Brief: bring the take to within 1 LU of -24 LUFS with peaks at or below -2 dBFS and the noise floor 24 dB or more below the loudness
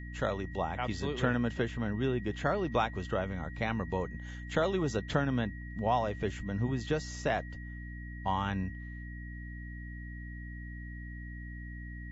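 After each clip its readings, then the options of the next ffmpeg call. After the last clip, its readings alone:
hum 60 Hz; harmonics up to 300 Hz; hum level -40 dBFS; steady tone 1900 Hz; tone level -49 dBFS; loudness -34.5 LUFS; peak -13.0 dBFS; loudness target -24.0 LUFS
-> -af "bandreject=f=60:t=h:w=4,bandreject=f=120:t=h:w=4,bandreject=f=180:t=h:w=4,bandreject=f=240:t=h:w=4,bandreject=f=300:t=h:w=4"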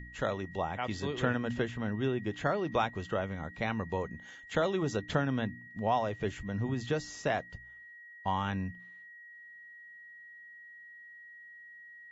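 hum none; steady tone 1900 Hz; tone level -49 dBFS
-> -af "bandreject=f=1.9k:w=30"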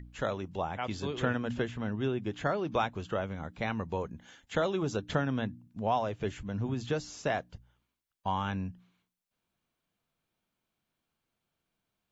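steady tone none; loudness -34.0 LUFS; peak -13.5 dBFS; loudness target -24.0 LUFS
-> -af "volume=10dB"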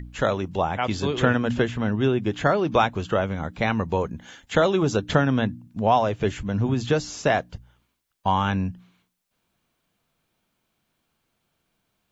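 loudness -24.0 LUFS; peak -3.5 dBFS; noise floor -75 dBFS

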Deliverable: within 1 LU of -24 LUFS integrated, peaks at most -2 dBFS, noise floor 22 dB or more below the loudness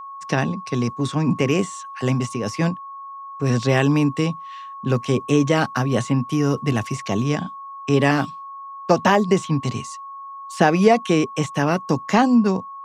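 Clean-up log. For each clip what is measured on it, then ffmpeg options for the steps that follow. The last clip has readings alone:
steady tone 1100 Hz; tone level -33 dBFS; loudness -20.5 LUFS; peak -2.5 dBFS; loudness target -24.0 LUFS
-> -af "bandreject=f=1.1k:w=30"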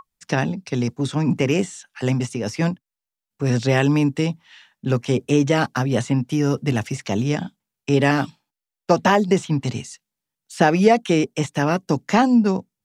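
steady tone none; loudness -20.5 LUFS; peak -2.5 dBFS; loudness target -24.0 LUFS
-> -af "volume=-3.5dB"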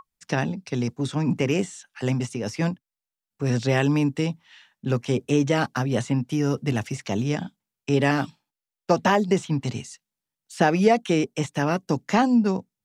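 loudness -24.0 LUFS; peak -6.0 dBFS; noise floor -90 dBFS

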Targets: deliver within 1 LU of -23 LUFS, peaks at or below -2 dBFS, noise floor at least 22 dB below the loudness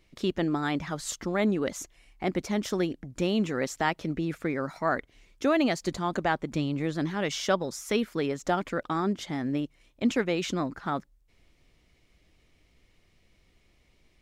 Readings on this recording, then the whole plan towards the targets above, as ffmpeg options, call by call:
loudness -29.5 LUFS; peak -11.0 dBFS; loudness target -23.0 LUFS
-> -af "volume=6.5dB"

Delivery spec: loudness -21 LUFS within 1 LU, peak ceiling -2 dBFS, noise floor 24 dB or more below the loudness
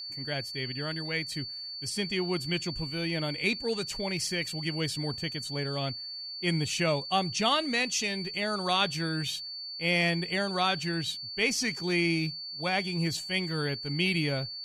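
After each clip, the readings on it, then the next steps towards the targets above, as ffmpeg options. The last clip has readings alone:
steady tone 4500 Hz; tone level -37 dBFS; loudness -29.5 LUFS; peak -13.0 dBFS; loudness target -21.0 LUFS
-> -af "bandreject=f=4.5k:w=30"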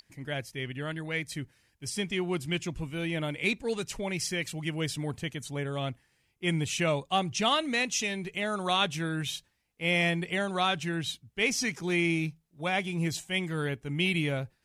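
steady tone none; loudness -30.5 LUFS; peak -13.5 dBFS; loudness target -21.0 LUFS
-> -af "volume=9.5dB"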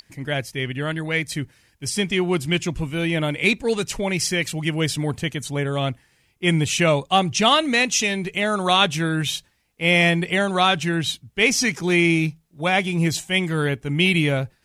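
loudness -21.0 LUFS; peak -4.0 dBFS; noise floor -63 dBFS

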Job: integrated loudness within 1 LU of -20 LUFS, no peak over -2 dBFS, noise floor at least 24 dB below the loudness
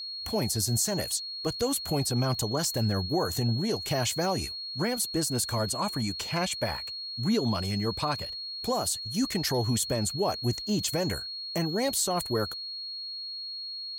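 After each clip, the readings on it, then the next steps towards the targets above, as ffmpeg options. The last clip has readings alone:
steady tone 4300 Hz; tone level -35 dBFS; loudness -29.0 LUFS; peak -16.0 dBFS; loudness target -20.0 LUFS
-> -af "bandreject=f=4.3k:w=30"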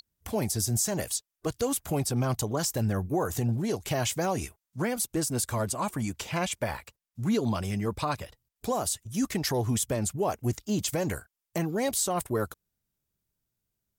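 steady tone none; loudness -29.5 LUFS; peak -16.0 dBFS; loudness target -20.0 LUFS
-> -af "volume=9.5dB"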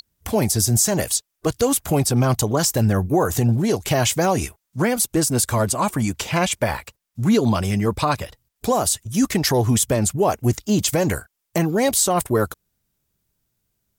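loudness -20.0 LUFS; peak -6.5 dBFS; noise floor -78 dBFS

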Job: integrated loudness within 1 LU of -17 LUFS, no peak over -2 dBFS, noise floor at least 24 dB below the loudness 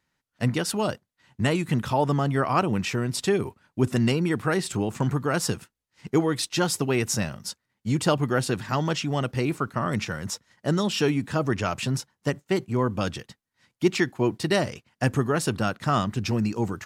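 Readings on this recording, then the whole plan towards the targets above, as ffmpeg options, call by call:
loudness -26.0 LUFS; peak -8.5 dBFS; loudness target -17.0 LUFS
-> -af "volume=9dB,alimiter=limit=-2dB:level=0:latency=1"

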